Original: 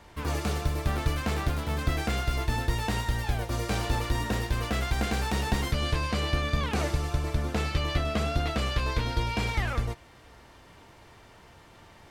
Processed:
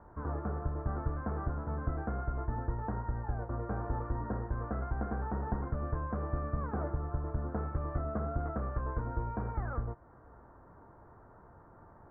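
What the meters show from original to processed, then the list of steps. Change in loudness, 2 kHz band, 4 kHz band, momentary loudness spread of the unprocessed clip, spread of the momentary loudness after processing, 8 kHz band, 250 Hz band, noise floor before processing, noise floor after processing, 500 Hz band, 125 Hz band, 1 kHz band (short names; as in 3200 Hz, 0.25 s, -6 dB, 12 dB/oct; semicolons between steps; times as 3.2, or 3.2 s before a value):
-7.5 dB, -16.0 dB, under -40 dB, 2 LU, 2 LU, under -40 dB, -6.5 dB, -53 dBFS, -57 dBFS, -6.5 dB, -6.5 dB, -6.5 dB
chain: steep low-pass 1500 Hz 48 dB/oct; in parallel at 0 dB: compressor, threshold -37 dBFS, peak gain reduction 15.5 dB; on the sum: gain -8.5 dB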